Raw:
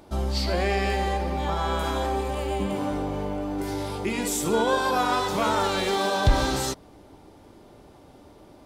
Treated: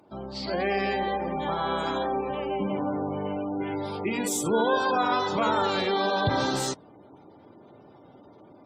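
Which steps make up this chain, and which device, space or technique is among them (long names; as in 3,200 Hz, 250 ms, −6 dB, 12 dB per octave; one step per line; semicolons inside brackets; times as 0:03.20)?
0:03.25–0:03.77: high shelf with overshoot 4,100 Hz −12.5 dB, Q 3
noise-suppressed video call (high-pass filter 110 Hz 24 dB per octave; gate on every frequency bin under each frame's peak −25 dB strong; automatic gain control gain up to 5.5 dB; level −6 dB; Opus 32 kbit/s 48,000 Hz)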